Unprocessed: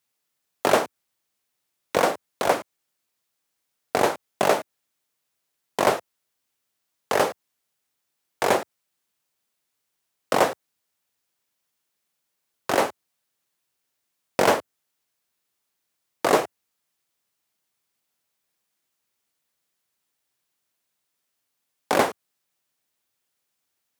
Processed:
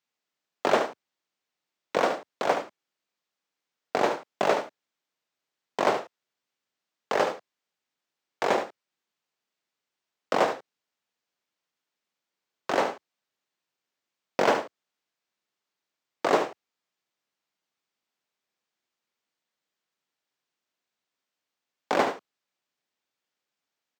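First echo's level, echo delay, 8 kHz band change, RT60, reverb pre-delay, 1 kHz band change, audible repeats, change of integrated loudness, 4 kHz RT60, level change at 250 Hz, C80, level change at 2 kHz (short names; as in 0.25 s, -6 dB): -9.0 dB, 74 ms, -10.0 dB, none, none, -3.0 dB, 1, -3.5 dB, none, -3.5 dB, none, -3.5 dB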